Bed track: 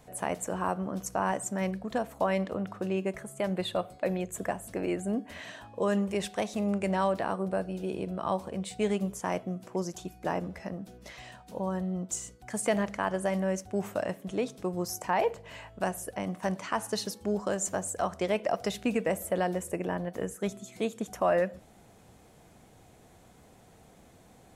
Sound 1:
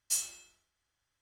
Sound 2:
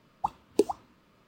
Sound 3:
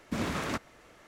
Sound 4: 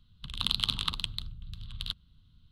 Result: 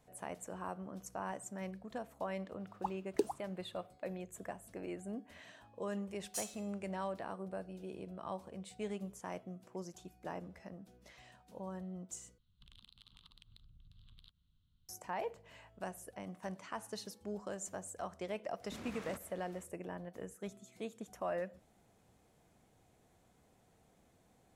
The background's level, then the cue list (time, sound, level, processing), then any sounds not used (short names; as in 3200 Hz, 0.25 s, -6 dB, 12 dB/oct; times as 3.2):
bed track -12.5 dB
2.6 add 2 -9 dB
6.24 add 1 -10.5 dB + block floating point 5-bit
12.38 replace with 4 -14.5 dB + compressor 16:1, threshold -41 dBFS
18.6 add 3 -6.5 dB, fades 0.05 s + compressor 4:1, threshold -40 dBFS